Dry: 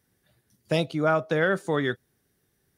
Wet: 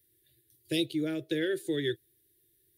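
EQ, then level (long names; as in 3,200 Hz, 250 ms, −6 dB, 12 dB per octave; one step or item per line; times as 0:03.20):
drawn EQ curve 140 Hz 0 dB, 210 Hz −23 dB, 330 Hz +10 dB, 760 Hz −21 dB, 1,200 Hz −28 dB, 1,700 Hz −3 dB, 2,600 Hz +1 dB, 3,700 Hz +8 dB, 5,800 Hz −2 dB, 12,000 Hz +14 dB
−5.5 dB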